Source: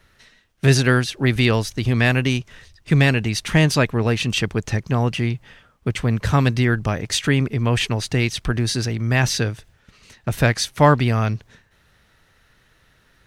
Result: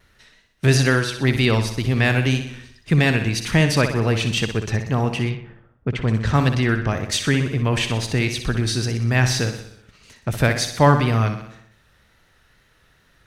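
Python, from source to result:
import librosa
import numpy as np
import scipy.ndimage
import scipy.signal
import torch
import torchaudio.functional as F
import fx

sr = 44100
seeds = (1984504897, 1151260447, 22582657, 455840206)

y = fx.echo_feedback(x, sr, ms=62, feedback_pct=58, wet_db=-9)
y = fx.env_lowpass(y, sr, base_hz=700.0, full_db=-13.0, at=(5.29, 6.91), fade=0.02)
y = fx.wow_flutter(y, sr, seeds[0], rate_hz=2.1, depth_cents=43.0)
y = F.gain(torch.from_numpy(y), -1.0).numpy()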